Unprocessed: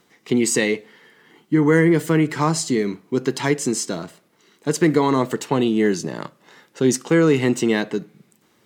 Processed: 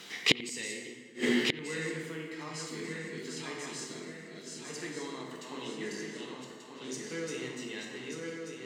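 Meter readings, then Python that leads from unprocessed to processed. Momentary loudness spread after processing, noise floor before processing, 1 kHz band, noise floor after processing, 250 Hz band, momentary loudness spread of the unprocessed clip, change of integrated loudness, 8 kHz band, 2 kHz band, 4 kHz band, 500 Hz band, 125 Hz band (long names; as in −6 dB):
15 LU, −61 dBFS, −19.5 dB, −49 dBFS, −18.5 dB, 12 LU, −16.0 dB, −14.0 dB, −9.5 dB, −3.5 dB, −18.5 dB, −21.5 dB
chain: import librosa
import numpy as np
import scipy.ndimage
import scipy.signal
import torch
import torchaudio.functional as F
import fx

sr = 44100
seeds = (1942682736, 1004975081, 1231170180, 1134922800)

y = fx.reverse_delay_fb(x, sr, ms=593, feedback_pct=65, wet_db=-3)
y = fx.weighting(y, sr, curve='D')
y = fx.rev_plate(y, sr, seeds[0], rt60_s=1.6, hf_ratio=0.6, predelay_ms=0, drr_db=-1.0)
y = fx.gate_flip(y, sr, shuts_db=-17.0, range_db=-32)
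y = fx.echo_bbd(y, sr, ms=88, stages=2048, feedback_pct=54, wet_db=-19.0)
y = F.gain(torch.from_numpy(y), 5.0).numpy()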